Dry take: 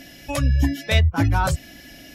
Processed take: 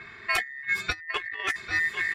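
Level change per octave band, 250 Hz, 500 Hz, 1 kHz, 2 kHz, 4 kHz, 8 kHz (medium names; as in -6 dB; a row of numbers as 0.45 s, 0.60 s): -23.0 dB, -12.5 dB, -7.5 dB, +4.5 dB, -4.0 dB, -7.5 dB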